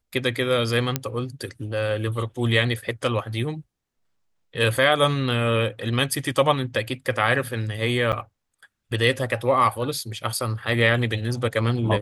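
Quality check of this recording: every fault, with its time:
0.96 s: pop -6 dBFS
8.12–8.13 s: dropout 8.6 ms

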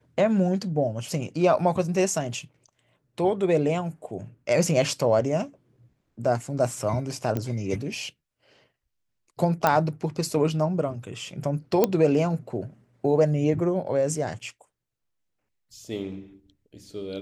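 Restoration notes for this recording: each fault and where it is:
7.37 s: pop -15 dBFS
9.67 s: pop -7 dBFS
11.84 s: pop -6 dBFS

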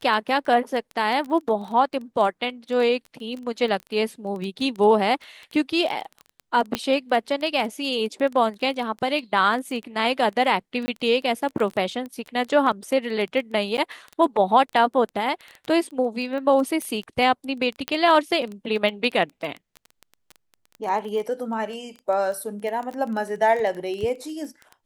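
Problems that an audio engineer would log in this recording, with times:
crackle 13 per s -28 dBFS
6.75 s: pop -8 dBFS
10.86–10.88 s: dropout 20 ms
13.77–13.78 s: dropout 9.8 ms
16.82 s: pop -17 dBFS
17.88 s: pop -9 dBFS

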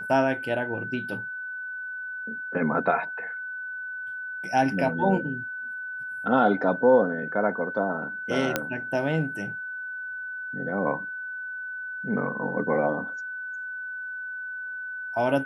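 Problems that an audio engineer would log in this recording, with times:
whine 1.5 kHz -32 dBFS
8.56 s: pop -8 dBFS

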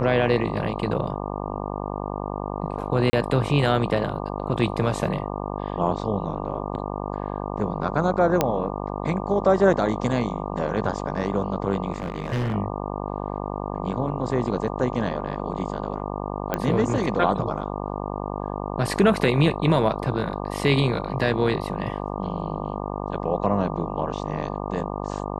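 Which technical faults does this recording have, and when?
buzz 50 Hz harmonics 24 -30 dBFS
3.10–3.13 s: dropout 30 ms
8.41 s: pop -5 dBFS
11.92–12.55 s: clipped -22 dBFS
16.54 s: pop -10 dBFS

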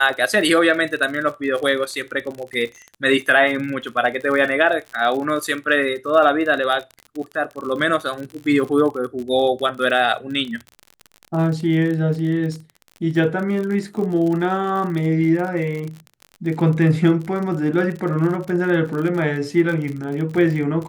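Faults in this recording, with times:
crackle 47 per s -27 dBFS

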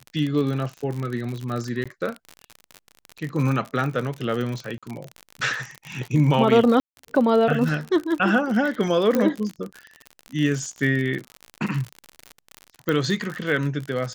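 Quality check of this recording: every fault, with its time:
crackle 53 per s -27 dBFS
1.84–1.86 s: dropout 16 ms
4.78–4.83 s: dropout 46 ms
6.80–6.97 s: dropout 171 ms
9.15 s: pop -9 dBFS
12.89 s: pop -11 dBFS

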